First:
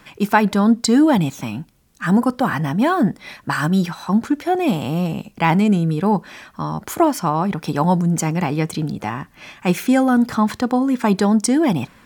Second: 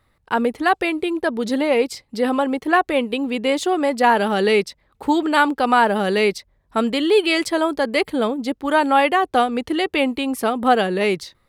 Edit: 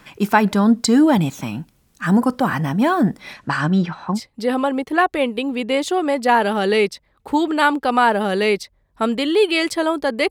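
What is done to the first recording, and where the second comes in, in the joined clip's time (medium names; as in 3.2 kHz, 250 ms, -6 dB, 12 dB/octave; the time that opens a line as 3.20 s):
first
3.33–4.20 s: low-pass 9.8 kHz -> 1.6 kHz
4.15 s: go over to second from 1.90 s, crossfade 0.10 s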